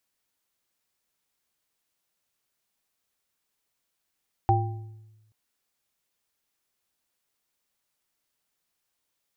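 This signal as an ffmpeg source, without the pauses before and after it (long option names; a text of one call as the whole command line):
ffmpeg -f lavfi -i "aevalsrc='0.106*pow(10,-3*t/1.14)*sin(2*PI*108*t)+0.0531*pow(10,-3*t/0.73)*sin(2*PI*353*t)+0.141*pow(10,-3*t/0.5)*sin(2*PI*788*t)':duration=0.83:sample_rate=44100" out.wav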